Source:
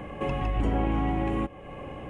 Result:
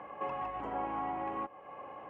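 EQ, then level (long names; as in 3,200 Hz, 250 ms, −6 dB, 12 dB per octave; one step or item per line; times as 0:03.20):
resonant band-pass 1,000 Hz, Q 1.8
0.0 dB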